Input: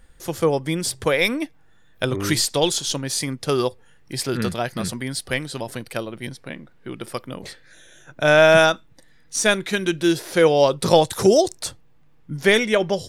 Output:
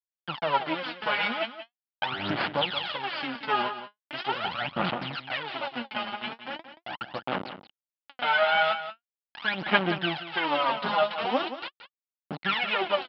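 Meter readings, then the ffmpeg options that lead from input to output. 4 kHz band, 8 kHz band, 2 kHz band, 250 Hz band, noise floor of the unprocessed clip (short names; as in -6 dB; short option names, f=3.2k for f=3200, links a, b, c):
-5.0 dB, under -40 dB, -5.0 dB, -11.5 dB, -52 dBFS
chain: -af "alimiter=limit=-11dB:level=0:latency=1:release=89,flanger=delay=6.2:depth=4.5:regen=36:speed=0.2:shape=triangular,aresample=11025,acrusher=bits=3:dc=4:mix=0:aa=0.000001,aresample=44100,aphaser=in_gain=1:out_gain=1:delay=4.9:decay=0.76:speed=0.41:type=sinusoidal,highpass=240,equalizer=f=300:t=q:w=4:g=-4,equalizer=f=430:t=q:w=4:g=-9,equalizer=f=830:t=q:w=4:g=7,equalizer=f=1.4k:t=q:w=4:g=5,equalizer=f=3k:t=q:w=4:g=7,lowpass=f=3.5k:w=0.5412,lowpass=f=3.5k:w=1.3066,aecho=1:1:177:0.266"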